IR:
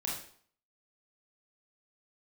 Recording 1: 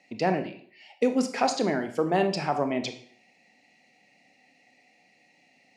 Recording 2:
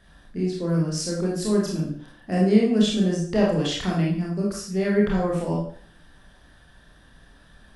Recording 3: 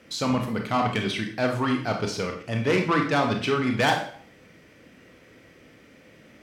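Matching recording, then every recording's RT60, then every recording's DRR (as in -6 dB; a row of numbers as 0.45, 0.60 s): 2; 0.55, 0.55, 0.55 s; 7.0, -4.0, 2.5 dB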